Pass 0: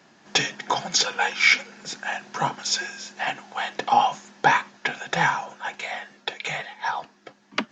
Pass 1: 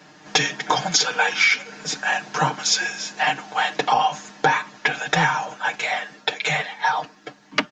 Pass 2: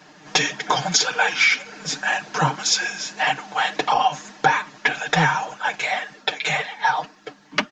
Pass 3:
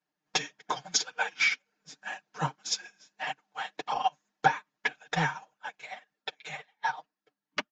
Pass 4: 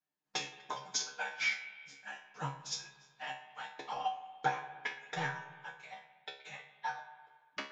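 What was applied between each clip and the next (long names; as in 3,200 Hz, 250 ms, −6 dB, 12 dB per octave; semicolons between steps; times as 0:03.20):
comb filter 6.6 ms, depth 88%; downward compressor 6 to 1, threshold −20 dBFS, peak gain reduction 10 dB; level +5 dB
flanger 1.8 Hz, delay 0.7 ms, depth 7 ms, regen +34%; level +4 dB
expander for the loud parts 2.5 to 1, over −36 dBFS; level −4.5 dB
tuned comb filter 69 Hz, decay 0.36 s, harmonics all, mix 90%; convolution reverb RT60 1.6 s, pre-delay 55 ms, DRR 10.5 dB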